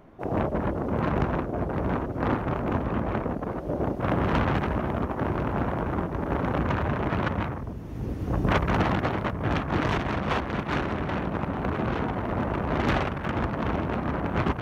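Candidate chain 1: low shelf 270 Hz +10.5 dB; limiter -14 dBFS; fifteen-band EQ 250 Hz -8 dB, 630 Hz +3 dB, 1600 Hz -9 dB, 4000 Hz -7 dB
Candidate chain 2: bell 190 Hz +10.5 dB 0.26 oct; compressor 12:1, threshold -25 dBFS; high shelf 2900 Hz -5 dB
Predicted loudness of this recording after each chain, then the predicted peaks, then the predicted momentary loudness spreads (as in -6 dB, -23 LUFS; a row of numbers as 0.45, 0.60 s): -25.5, -30.5 LUFS; -13.0, -16.5 dBFS; 2, 1 LU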